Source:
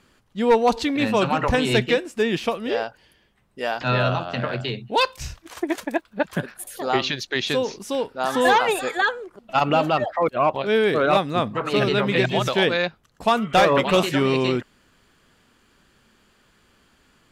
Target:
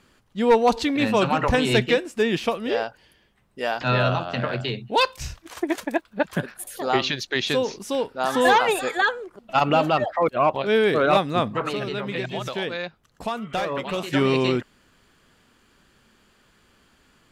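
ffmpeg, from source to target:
-filter_complex "[0:a]asettb=1/sr,asplit=3[s0][s1][s2];[s0]atrim=end=11.714[s3];[s1]atrim=start=11.71:end=14.13,asetpts=PTS-STARTPTS,afade=t=in:d=0.004:c=qsin,afade=t=out:st=2.416:d=0.004:c=qsin,acompressor=threshold=0.0251:ratio=2[s4];[s2]atrim=start=14.126[s5];[s3][s4]acrossfade=d=0.004:c1=hsin:c2=qsin[s6];[s6][s5]acrossfade=d=0.004:c1=qsin:c2=hsin"

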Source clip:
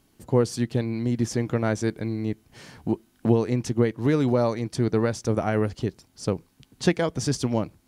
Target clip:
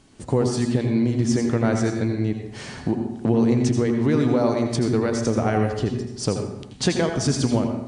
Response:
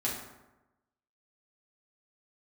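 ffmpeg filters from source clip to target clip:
-filter_complex "[0:a]acompressor=threshold=0.0224:ratio=2,asplit=2[s0][s1];[1:a]atrim=start_sample=2205,afade=t=out:st=0.4:d=0.01,atrim=end_sample=18081,adelay=80[s2];[s1][s2]afir=irnorm=-1:irlink=0,volume=0.335[s3];[s0][s3]amix=inputs=2:normalize=0,volume=2.82" -ar 22050 -c:a libmp3lame -b:a 56k

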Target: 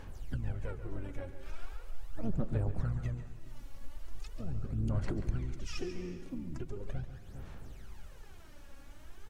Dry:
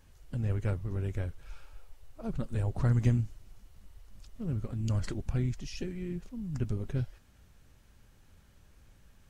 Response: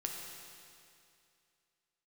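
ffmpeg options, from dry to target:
-filter_complex "[0:a]equalizer=f=760:w=0.34:g=5,acompressor=threshold=0.00708:ratio=4,asplit=2[s0][s1];[s1]adelay=408.2,volume=0.112,highshelf=f=4000:g=-9.18[s2];[s0][s2]amix=inputs=2:normalize=0,asplit=3[s3][s4][s5];[s4]asetrate=22050,aresample=44100,atempo=2,volume=0.447[s6];[s5]asetrate=58866,aresample=44100,atempo=0.749154,volume=0.251[s7];[s3][s6][s7]amix=inputs=3:normalize=0,aphaser=in_gain=1:out_gain=1:delay=3.6:decay=0.64:speed=0.4:type=sinusoidal,asplit=2[s8][s9];[1:a]atrim=start_sample=2205,afade=t=out:st=0.37:d=0.01,atrim=end_sample=16758,adelay=139[s10];[s9][s10]afir=irnorm=-1:irlink=0,volume=0.335[s11];[s8][s11]amix=inputs=2:normalize=0,volume=1.19"

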